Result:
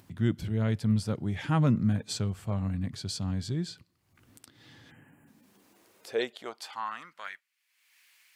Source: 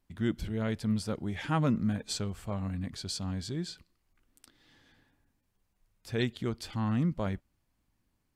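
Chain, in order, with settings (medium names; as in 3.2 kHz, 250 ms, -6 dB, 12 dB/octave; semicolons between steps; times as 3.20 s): high-pass sweep 110 Hz -> 2.2 kHz, 4.84–7.52 s; upward compressor, threshold -45 dBFS; spectral selection erased 4.90–5.28 s, 3.2–6.8 kHz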